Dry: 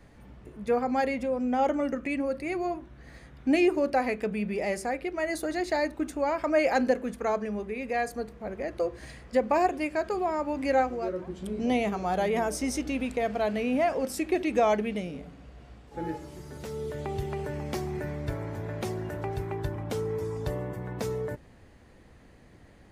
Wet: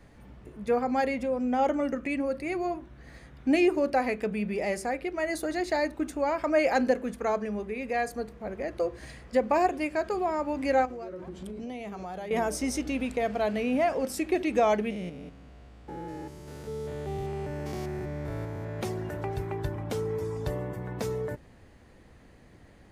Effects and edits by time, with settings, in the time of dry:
10.85–12.31 compressor, threshold -35 dBFS
14.9–18.8 stepped spectrum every 0.2 s

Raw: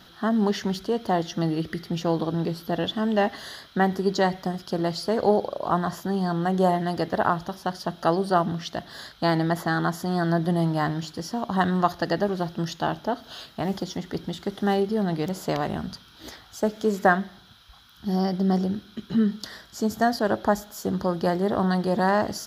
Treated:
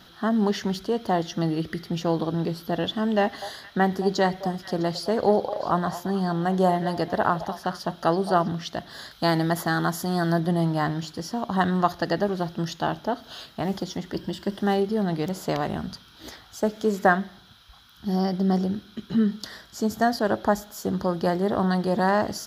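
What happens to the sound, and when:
3.2–8.48 delay with a stepping band-pass 0.218 s, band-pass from 700 Hz, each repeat 1.4 oct, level -10.5 dB
9.11–10.4 high shelf 5900 Hz +9 dB
14.12–14.6 ripple EQ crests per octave 1.3, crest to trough 8 dB

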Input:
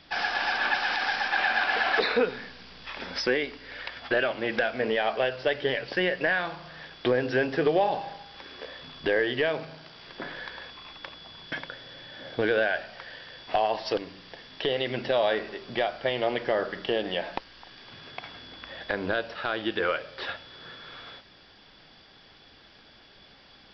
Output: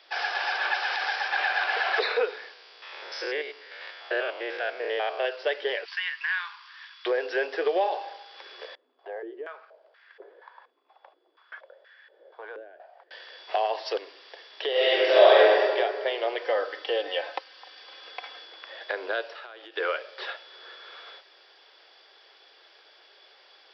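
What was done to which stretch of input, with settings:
2.53–5.25 stepped spectrum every 0.1 s
5.85–7.06 elliptic high-pass 1000 Hz
8.75–13.11 stepped band-pass 4.2 Hz 250–1700 Hz
14.71–15.63 reverb throw, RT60 1.8 s, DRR -10 dB
16.42–18.45 comb 3.9 ms
19.29–19.77 compressor 16:1, threshold -37 dBFS
whole clip: steep high-pass 370 Hz 48 dB/oct; gain -1 dB

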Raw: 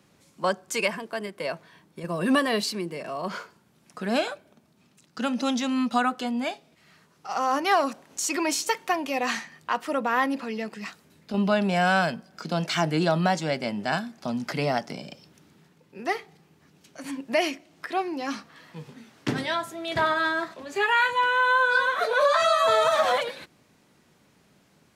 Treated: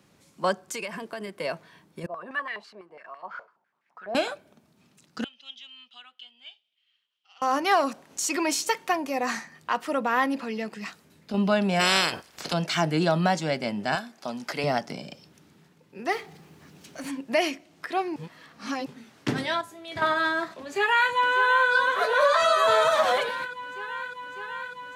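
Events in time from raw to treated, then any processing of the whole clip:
0.58–1.38 compressor 5:1, threshold -30 dBFS
2.06–4.15 stepped band-pass 12 Hz 650–1900 Hz
5.24–7.42 band-pass 3100 Hz, Q 12
8.97–9.55 bell 3100 Hz -10 dB 0.67 oct
11.79–12.52 spectral limiter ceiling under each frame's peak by 26 dB
13.95–14.64 tone controls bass -13 dB, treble +1 dB
16.12–17.09 G.711 law mismatch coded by mu
18.16–18.86 reverse
19.61–20.02 resonator 100 Hz, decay 0.22 s, mix 80%
20.62–21.73 echo throw 0.6 s, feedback 85%, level -11 dB

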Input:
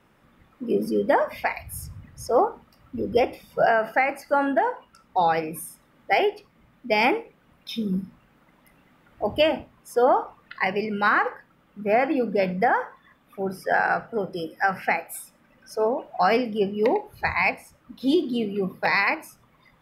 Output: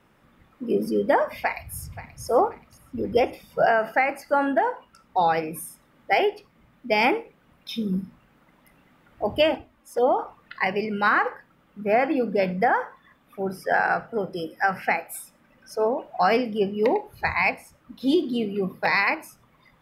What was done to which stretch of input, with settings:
1.39–2.24 echo throw 0.53 s, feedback 35%, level -15.5 dB
9.54–10.19 envelope flanger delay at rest 4.1 ms, full sweep at -17 dBFS

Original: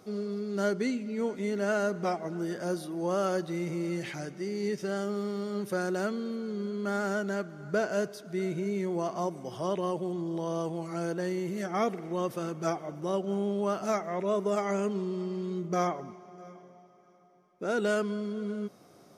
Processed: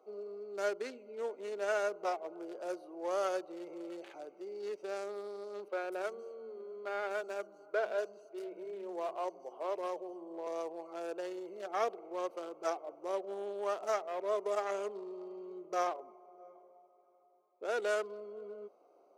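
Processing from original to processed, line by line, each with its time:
5.68–10.47 three bands offset in time mids, lows, highs 0.12/0.24 s, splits 230/4200 Hz
whole clip: Wiener smoothing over 25 samples; HPF 430 Hz 24 dB/oct; gain -2.5 dB

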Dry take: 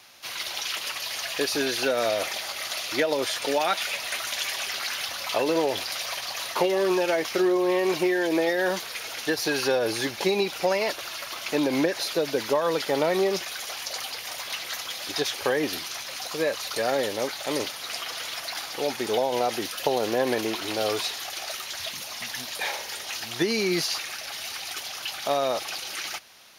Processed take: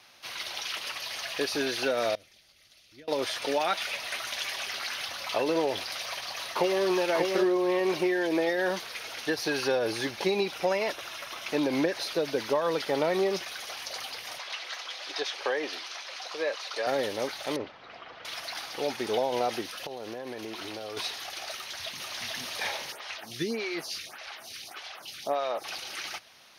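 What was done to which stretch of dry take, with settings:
2.15–3.08 passive tone stack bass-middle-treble 10-0-1
6.04–6.84 echo throw 0.59 s, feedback 15%, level -3 dB
10.55–11.49 notch 4500 Hz, Q 9.3
14.38–16.87 three-band isolator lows -22 dB, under 350 Hz, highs -17 dB, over 7200 Hz
17.56–18.25 tape spacing loss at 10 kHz 42 dB
19.61–20.97 compressor 16:1, threshold -30 dBFS
21.55–22.23 echo throw 0.44 s, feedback 75%, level -1 dB
22.92–25.64 photocell phaser 1.7 Hz
whole clip: high shelf 9700 Hz -9.5 dB; notch 7100 Hz, Q 7.6; gain -3 dB

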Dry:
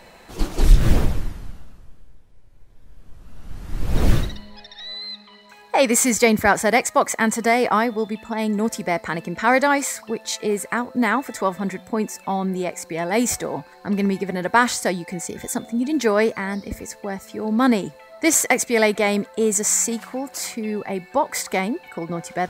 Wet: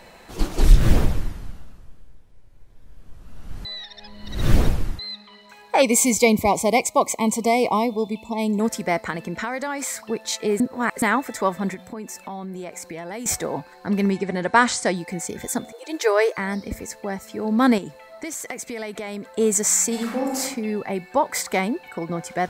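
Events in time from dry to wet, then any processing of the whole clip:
3.65–4.99 reverse
5.82–8.6 elliptic band-stop 1100–2200 Hz
9.1–10.04 compressor 10:1, threshold -23 dBFS
10.6–11.02 reverse
11.74–13.26 compressor, threshold -30 dBFS
14.11–14.96 steep low-pass 9600 Hz
15.72–16.38 brick-wall FIR high-pass 320 Hz
17.78–19.3 compressor 8:1, threshold -28 dBFS
19.9–20.38 reverb throw, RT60 0.89 s, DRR -3 dB

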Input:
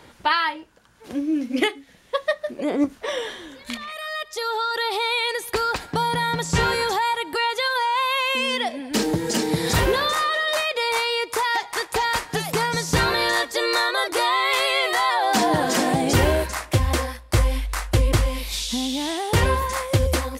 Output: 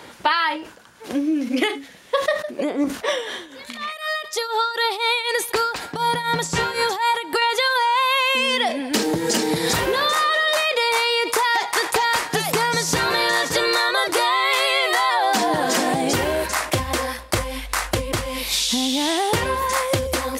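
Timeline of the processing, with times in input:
2.29–7.42 tremolo triangle 4 Hz, depth 85%
12.41–13.25 echo throw 0.57 s, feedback 15%, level -12.5 dB
whole clip: compressor, threshold -24 dBFS; HPF 240 Hz 6 dB/oct; sustainer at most 110 dB/s; gain +8 dB

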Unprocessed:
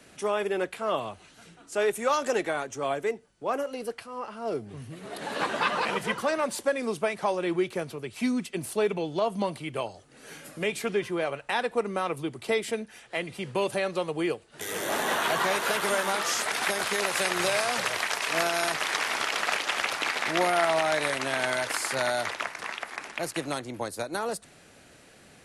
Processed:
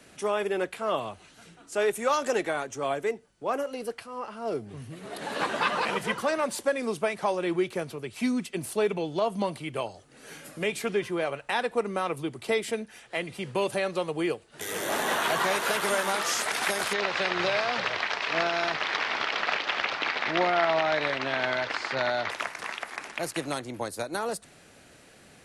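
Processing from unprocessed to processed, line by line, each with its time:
16.93–22.3 LPF 4700 Hz 24 dB/oct

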